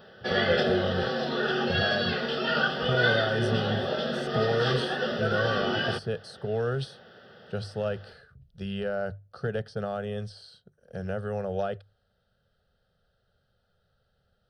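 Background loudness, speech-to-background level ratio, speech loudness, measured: -27.5 LUFS, -5.0 dB, -32.5 LUFS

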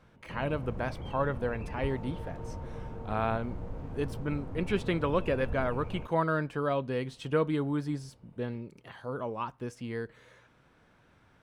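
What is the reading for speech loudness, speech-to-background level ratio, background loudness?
-33.0 LUFS, 8.5 dB, -41.5 LUFS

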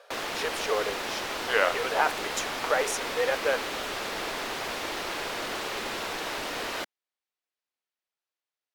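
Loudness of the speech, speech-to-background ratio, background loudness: -29.5 LUFS, 2.5 dB, -32.0 LUFS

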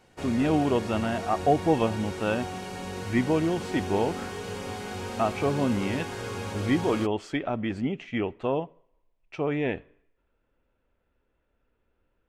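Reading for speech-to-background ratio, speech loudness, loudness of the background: 7.5 dB, -28.0 LUFS, -35.5 LUFS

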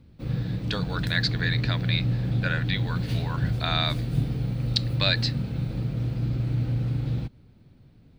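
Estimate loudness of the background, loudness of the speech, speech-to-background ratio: -28.0 LUFS, -29.5 LUFS, -1.5 dB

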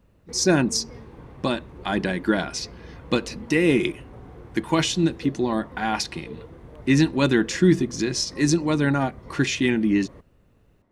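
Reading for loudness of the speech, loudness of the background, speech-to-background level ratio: -23.0 LUFS, -43.0 LUFS, 20.0 dB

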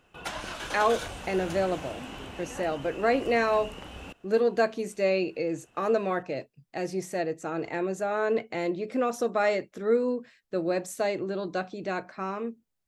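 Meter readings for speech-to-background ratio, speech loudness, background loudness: 10.0 dB, -29.0 LUFS, -39.0 LUFS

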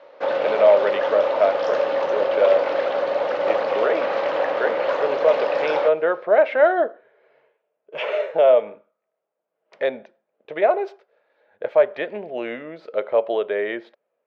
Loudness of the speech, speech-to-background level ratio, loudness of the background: -21.5 LUFS, 1.0 dB, -22.5 LUFS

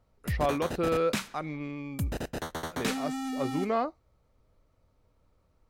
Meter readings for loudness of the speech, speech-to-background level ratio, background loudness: -32.5 LUFS, 2.5 dB, -35.0 LUFS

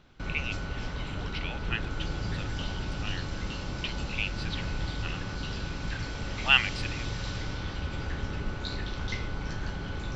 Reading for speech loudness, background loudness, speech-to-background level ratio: -31.5 LUFS, -35.5 LUFS, 4.0 dB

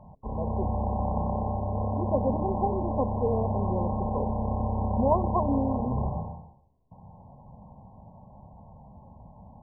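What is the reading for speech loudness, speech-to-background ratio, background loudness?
-31.5 LUFS, -1.5 dB, -30.0 LUFS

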